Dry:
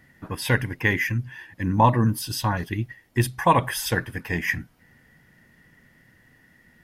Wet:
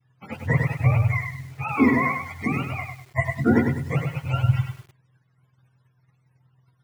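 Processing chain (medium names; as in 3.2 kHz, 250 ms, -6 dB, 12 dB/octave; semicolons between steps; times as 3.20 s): spectrum inverted on a logarithmic axis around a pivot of 490 Hz; expander -46 dBFS; bit-crushed delay 100 ms, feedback 35%, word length 8-bit, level -5 dB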